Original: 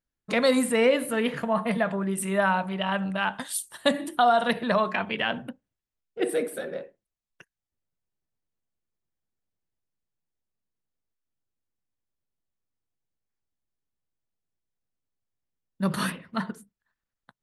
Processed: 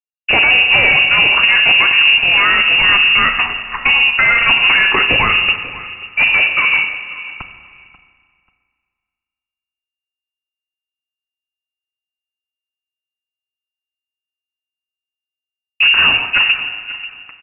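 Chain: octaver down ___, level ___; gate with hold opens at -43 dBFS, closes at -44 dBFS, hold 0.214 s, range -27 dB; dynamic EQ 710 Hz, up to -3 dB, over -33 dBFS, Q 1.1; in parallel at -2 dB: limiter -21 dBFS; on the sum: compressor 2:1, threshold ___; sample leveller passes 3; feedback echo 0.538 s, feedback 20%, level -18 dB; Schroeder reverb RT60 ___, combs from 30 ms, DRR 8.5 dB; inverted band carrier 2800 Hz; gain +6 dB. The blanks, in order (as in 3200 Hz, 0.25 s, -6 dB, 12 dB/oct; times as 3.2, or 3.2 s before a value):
2 oct, +3 dB, -25 dBFS, 2 s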